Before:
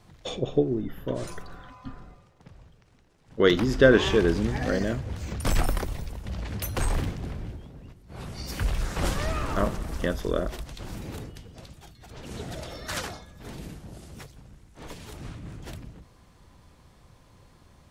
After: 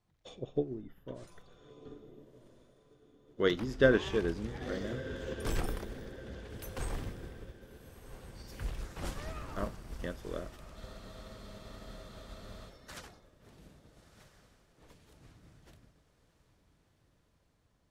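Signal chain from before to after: diffused feedback echo 1.344 s, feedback 51%, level -8.5 dB; spectral freeze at 10.78, 1.90 s; upward expander 1.5:1, over -45 dBFS; gain -6.5 dB

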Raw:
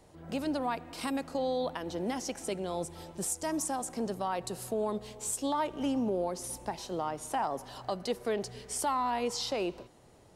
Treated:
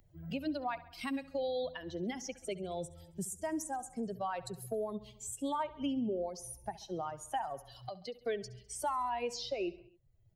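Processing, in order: per-bin expansion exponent 2; 7.7–8.26 compressor 6:1, threshold -50 dBFS, peak gain reduction 18.5 dB; on a send: feedback echo 67 ms, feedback 51%, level -18.5 dB; on the sum: three-band squash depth 70%

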